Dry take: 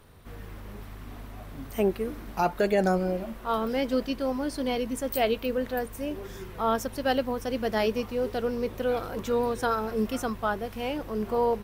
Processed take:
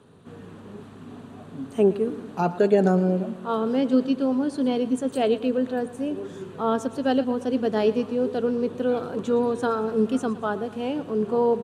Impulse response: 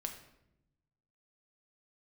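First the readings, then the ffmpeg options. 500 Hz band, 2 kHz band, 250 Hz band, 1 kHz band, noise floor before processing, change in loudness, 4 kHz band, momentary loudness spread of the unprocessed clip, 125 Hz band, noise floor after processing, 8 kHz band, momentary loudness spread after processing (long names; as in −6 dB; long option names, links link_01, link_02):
+4.0 dB, −2.5 dB, +7.0 dB, 0.0 dB, −43 dBFS, +4.5 dB, −2.0 dB, 17 LU, +5.0 dB, −44 dBFS, −3.5 dB, 16 LU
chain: -af "highpass=frequency=100:width=0.5412,highpass=frequency=100:width=1.3066,equalizer=frequency=170:width_type=q:width=4:gain=8,equalizer=frequency=260:width_type=q:width=4:gain=8,equalizer=frequency=420:width_type=q:width=4:gain=7,equalizer=frequency=2100:width_type=q:width=4:gain=-9,equalizer=frequency=5300:width_type=q:width=4:gain=-10,lowpass=frequency=9000:width=0.5412,lowpass=frequency=9000:width=1.3066,aecho=1:1:114|228|342|456|570:0.15|0.0793|0.042|0.0223|0.0118"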